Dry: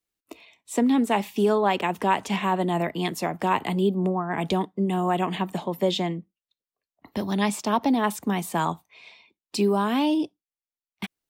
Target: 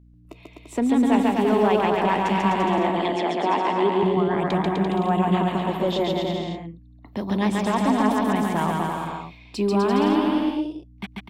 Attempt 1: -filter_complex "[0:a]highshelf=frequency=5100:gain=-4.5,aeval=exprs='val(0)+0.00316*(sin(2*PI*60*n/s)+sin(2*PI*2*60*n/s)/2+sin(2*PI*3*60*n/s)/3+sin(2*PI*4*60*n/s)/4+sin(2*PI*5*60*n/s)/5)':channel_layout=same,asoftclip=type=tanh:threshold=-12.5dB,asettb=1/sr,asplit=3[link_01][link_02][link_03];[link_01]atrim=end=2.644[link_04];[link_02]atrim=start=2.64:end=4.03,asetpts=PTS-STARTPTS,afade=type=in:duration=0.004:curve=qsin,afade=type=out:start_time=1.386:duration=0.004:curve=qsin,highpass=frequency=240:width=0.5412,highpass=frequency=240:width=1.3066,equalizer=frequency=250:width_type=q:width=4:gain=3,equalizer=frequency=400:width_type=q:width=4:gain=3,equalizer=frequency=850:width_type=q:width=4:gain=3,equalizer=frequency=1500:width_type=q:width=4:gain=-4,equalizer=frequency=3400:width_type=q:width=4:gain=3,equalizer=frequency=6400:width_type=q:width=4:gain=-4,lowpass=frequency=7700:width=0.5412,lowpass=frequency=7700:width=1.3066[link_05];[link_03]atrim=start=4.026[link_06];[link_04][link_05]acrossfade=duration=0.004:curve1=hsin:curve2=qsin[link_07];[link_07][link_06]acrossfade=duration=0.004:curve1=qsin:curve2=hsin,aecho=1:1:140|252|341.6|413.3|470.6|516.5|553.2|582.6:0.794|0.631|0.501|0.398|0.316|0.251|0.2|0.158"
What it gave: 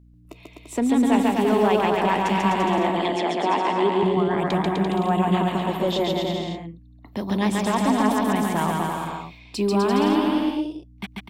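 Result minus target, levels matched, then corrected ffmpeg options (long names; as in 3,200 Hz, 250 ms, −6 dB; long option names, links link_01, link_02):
8,000 Hz band +5.0 dB
-filter_complex "[0:a]highshelf=frequency=5100:gain=-11.5,aeval=exprs='val(0)+0.00316*(sin(2*PI*60*n/s)+sin(2*PI*2*60*n/s)/2+sin(2*PI*3*60*n/s)/3+sin(2*PI*4*60*n/s)/4+sin(2*PI*5*60*n/s)/5)':channel_layout=same,asoftclip=type=tanh:threshold=-12.5dB,asettb=1/sr,asplit=3[link_01][link_02][link_03];[link_01]atrim=end=2.644[link_04];[link_02]atrim=start=2.64:end=4.03,asetpts=PTS-STARTPTS,afade=type=in:duration=0.004:curve=qsin,afade=type=out:start_time=1.386:duration=0.004:curve=qsin,highpass=frequency=240:width=0.5412,highpass=frequency=240:width=1.3066,equalizer=frequency=250:width_type=q:width=4:gain=3,equalizer=frequency=400:width_type=q:width=4:gain=3,equalizer=frequency=850:width_type=q:width=4:gain=3,equalizer=frequency=1500:width_type=q:width=4:gain=-4,equalizer=frequency=3400:width_type=q:width=4:gain=3,equalizer=frequency=6400:width_type=q:width=4:gain=-4,lowpass=frequency=7700:width=0.5412,lowpass=frequency=7700:width=1.3066[link_05];[link_03]atrim=start=4.026[link_06];[link_04][link_05]acrossfade=duration=0.004:curve1=hsin:curve2=qsin[link_07];[link_07][link_06]acrossfade=duration=0.004:curve1=qsin:curve2=hsin,aecho=1:1:140|252|341.6|413.3|470.6|516.5|553.2|582.6:0.794|0.631|0.501|0.398|0.316|0.251|0.2|0.158"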